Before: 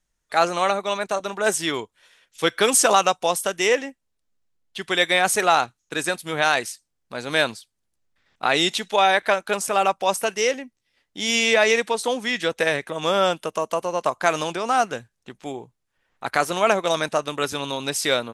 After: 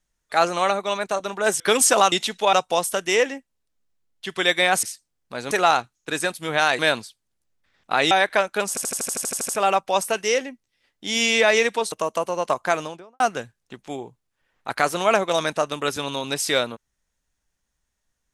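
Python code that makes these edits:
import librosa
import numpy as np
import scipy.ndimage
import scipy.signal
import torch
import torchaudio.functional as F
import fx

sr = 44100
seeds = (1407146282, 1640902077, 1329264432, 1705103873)

y = fx.studio_fade_out(x, sr, start_s=14.14, length_s=0.62)
y = fx.edit(y, sr, fx.cut(start_s=1.6, length_s=0.93),
    fx.move(start_s=6.63, length_s=0.68, to_s=5.35),
    fx.move(start_s=8.63, length_s=0.41, to_s=3.05),
    fx.stutter(start_s=9.62, slice_s=0.08, count=11),
    fx.cut(start_s=12.05, length_s=1.43), tone=tone)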